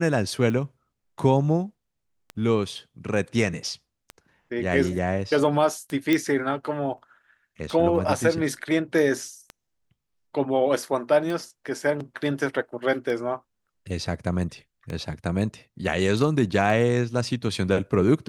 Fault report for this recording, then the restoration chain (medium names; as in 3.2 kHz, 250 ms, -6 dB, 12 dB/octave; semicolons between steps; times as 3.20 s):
tick 33 1/3 rpm -20 dBFS
6.13 s: pop -9 dBFS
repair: de-click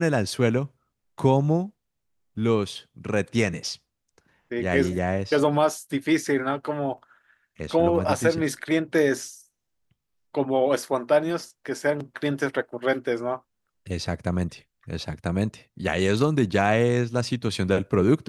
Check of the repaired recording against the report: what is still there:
nothing left